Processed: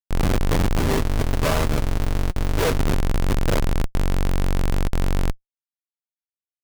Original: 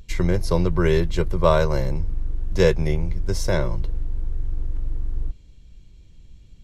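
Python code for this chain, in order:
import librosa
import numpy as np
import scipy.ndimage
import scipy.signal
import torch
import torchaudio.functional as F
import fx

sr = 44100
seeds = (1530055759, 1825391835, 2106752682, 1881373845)

y = fx.schmitt(x, sr, flips_db=-20.5)
y = fx.notch_comb(y, sr, f0_hz=180.0, at=(0.79, 2.78))
y = y * librosa.db_to_amplitude(3.5)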